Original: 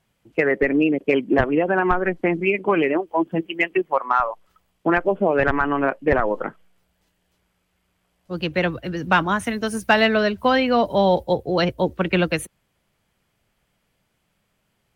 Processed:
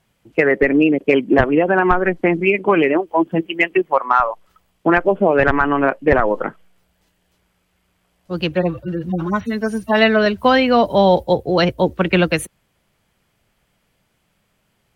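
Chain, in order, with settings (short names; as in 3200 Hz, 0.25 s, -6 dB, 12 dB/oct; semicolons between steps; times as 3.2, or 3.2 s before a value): 8.55–10.26 median-filter separation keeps harmonic; gain +4.5 dB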